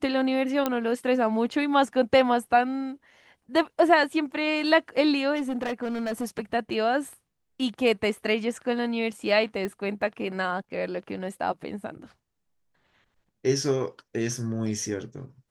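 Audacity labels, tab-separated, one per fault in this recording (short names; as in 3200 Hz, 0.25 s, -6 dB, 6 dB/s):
0.660000	0.660000	pop -11 dBFS
5.350000	6.250000	clipped -24.5 dBFS
9.650000	9.650000	pop -18 dBFS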